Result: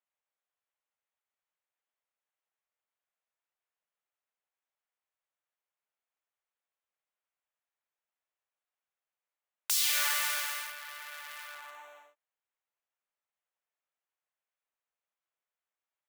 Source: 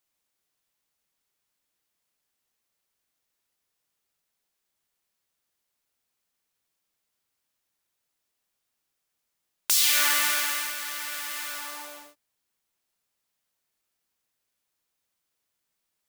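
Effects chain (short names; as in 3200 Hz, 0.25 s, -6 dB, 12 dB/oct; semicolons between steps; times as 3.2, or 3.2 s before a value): Wiener smoothing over 9 samples; HPF 500 Hz 24 dB/oct; gain -6.5 dB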